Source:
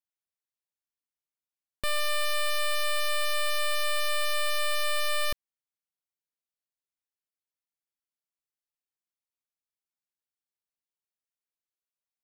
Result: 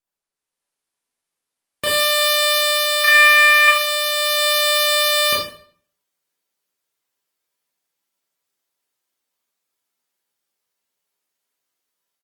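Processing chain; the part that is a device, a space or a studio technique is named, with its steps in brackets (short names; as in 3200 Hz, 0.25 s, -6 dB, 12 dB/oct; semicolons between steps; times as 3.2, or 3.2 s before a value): 3.04–3.68 band shelf 1800 Hz +15 dB 1.3 oct; doubler 12 ms -10 dB; far-field microphone of a smart speaker (reverb RT60 0.55 s, pre-delay 23 ms, DRR -5 dB; HPF 140 Hz 12 dB/oct; AGC gain up to 9.5 dB; Opus 32 kbps 48000 Hz)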